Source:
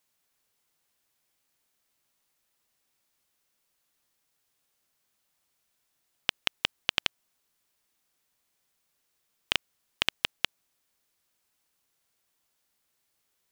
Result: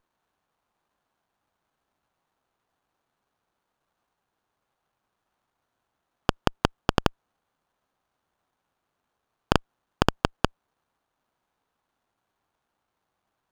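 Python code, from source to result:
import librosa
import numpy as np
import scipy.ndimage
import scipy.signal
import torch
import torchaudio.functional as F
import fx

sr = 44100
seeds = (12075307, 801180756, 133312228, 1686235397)

y = fx.band_shelf(x, sr, hz=1100.0, db=11.5, octaves=1.7)
y = fx.running_max(y, sr, window=17)
y = F.gain(torch.from_numpy(y), -2.0).numpy()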